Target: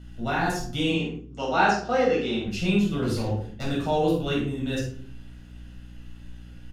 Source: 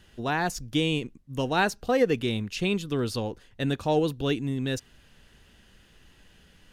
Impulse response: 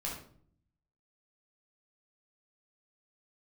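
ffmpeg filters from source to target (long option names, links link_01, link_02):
-filter_complex "[0:a]asettb=1/sr,asplit=3[link_01][link_02][link_03];[link_01]atrim=end=0.904[link_04];[link_02]atrim=start=0.9:end=2.46,asetpts=PTS-STARTPTS,afade=type=in:duration=0.004:curve=qsin,afade=type=out:start_time=1.556:duration=0.004:curve=qsin,highpass=260,equalizer=frequency=830:width_type=q:width=4:gain=5,equalizer=frequency=1300:width_type=q:width=4:gain=4,equalizer=frequency=5300:width_type=q:width=4:gain=4,lowpass=frequency=7000:width=0.5412,lowpass=frequency=7000:width=1.3066[link_05];[link_03]atrim=start=2.456[link_06];[link_04][link_05]acrossfade=duration=0.004:curve1=hsin:curve2=qsin[link_07];[link_07][link_06]acrossfade=duration=0.004:curve1=qsin:curve2=hsin,asettb=1/sr,asplit=3[link_08][link_09][link_10];[link_08]atrim=end=3.024[link_11];[link_09]atrim=start=3.02:end=3.66,asetpts=PTS-STARTPTS,afade=type=in:duration=0.004:curve=qsin,afade=type=out:start_time=0.636:duration=0.004:curve=qsin,aeval=exprs='0.0668*(abs(mod(val(0)/0.0668+3,4)-2)-1)':channel_layout=same[link_12];[link_10]atrim=start=3.656[link_13];[link_11][link_12]acrossfade=duration=0.004:curve1=hsin:curve2=qsin[link_14];[link_14][link_13]acrossfade=duration=0.004:curve1=qsin:curve2=hsin,asplit=2[link_15][link_16];[link_16]adelay=48,volume=-7dB[link_17];[link_15][link_17]amix=inputs=2:normalize=0[link_18];[1:a]atrim=start_sample=2205,asetrate=52920,aresample=44100[link_19];[link_18][link_19]afir=irnorm=-1:irlink=0,aeval=exprs='val(0)+0.00708*(sin(2*PI*60*n/s)+sin(2*PI*2*60*n/s)/2+sin(2*PI*3*60*n/s)/3+sin(2*PI*4*60*n/s)/4+sin(2*PI*5*60*n/s)/5)':channel_layout=same"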